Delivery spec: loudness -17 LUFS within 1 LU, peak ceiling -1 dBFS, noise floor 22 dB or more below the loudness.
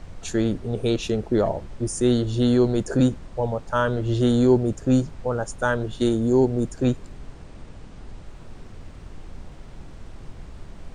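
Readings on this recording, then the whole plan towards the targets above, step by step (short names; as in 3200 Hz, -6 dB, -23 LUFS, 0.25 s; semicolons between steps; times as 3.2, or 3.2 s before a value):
noise floor -42 dBFS; noise floor target -45 dBFS; loudness -23.0 LUFS; peak -8.0 dBFS; loudness target -17.0 LUFS
-> noise print and reduce 6 dB; gain +6 dB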